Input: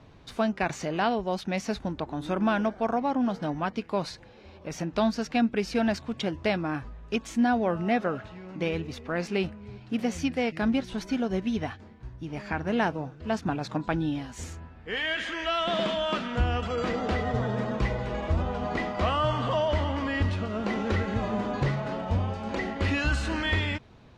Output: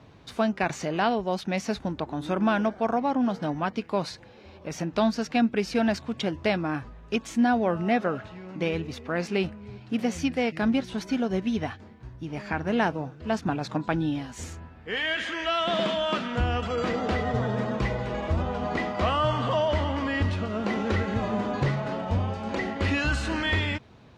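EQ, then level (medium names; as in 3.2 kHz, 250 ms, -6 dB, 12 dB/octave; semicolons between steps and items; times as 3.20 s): high-pass 64 Hz; +1.5 dB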